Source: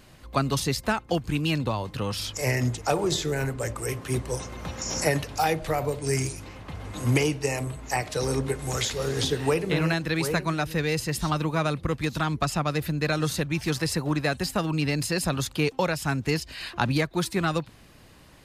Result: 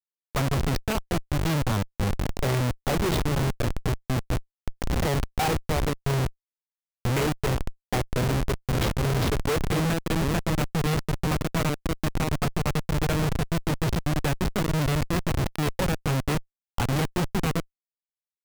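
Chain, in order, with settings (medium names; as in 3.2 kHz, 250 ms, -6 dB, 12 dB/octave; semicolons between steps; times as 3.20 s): low-pass 6.4 kHz 24 dB/octave; Schmitt trigger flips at -24 dBFS; trim +4 dB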